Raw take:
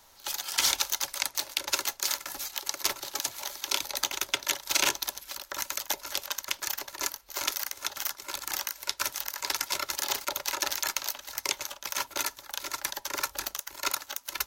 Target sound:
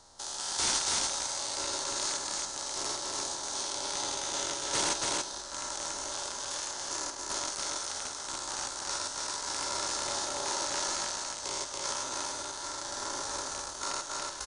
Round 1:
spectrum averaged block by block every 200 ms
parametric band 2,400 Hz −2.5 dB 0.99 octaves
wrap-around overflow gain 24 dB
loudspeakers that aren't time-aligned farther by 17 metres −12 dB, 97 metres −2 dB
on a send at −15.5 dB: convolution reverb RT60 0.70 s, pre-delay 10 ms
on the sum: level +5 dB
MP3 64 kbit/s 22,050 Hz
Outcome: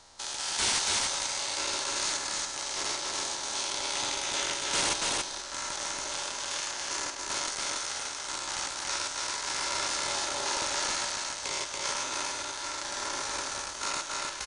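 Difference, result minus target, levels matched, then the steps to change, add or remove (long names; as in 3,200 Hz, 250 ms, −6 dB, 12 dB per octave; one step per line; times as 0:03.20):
2,000 Hz band +4.0 dB
change: parametric band 2,400 Hz −14 dB 0.99 octaves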